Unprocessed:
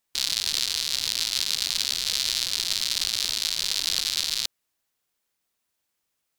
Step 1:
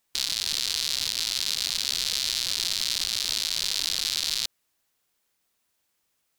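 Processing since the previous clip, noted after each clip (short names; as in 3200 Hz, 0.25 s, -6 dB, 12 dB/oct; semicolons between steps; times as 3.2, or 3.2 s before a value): limiter -13 dBFS, peak gain reduction 8 dB; gain +4 dB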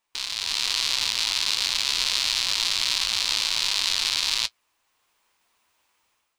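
fifteen-band EQ 160 Hz -7 dB, 1000 Hz +10 dB, 2500 Hz +5 dB, 16000 Hz -11 dB; AGC gain up to 10 dB; flange 1.1 Hz, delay 8.6 ms, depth 1.8 ms, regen -46%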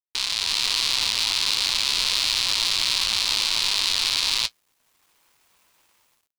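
in parallel at 0 dB: limiter -12.5 dBFS, peak gain reduction 8.5 dB; on the sum: bit-crush 10-bit; soft clip -7 dBFS, distortion -15 dB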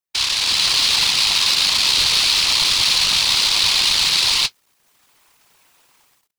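whisperiser; gain +6.5 dB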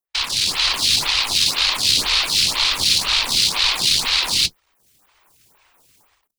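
octaver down 2 oct, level +4 dB; photocell phaser 2 Hz; gain +2.5 dB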